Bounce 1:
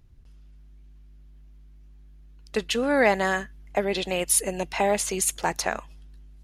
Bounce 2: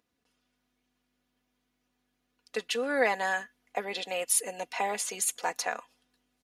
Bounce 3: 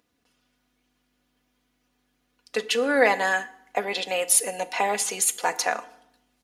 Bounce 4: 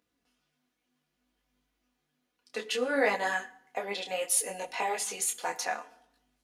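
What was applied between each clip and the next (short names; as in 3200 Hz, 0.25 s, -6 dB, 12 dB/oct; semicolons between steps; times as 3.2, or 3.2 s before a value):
HPF 390 Hz 12 dB/oct; comb 4.1 ms, depth 60%; gain -6 dB
FDN reverb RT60 0.76 s, low-frequency decay 1.4×, high-frequency decay 0.75×, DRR 13 dB; gain +6.5 dB
detuned doubles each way 22 cents; gain -3.5 dB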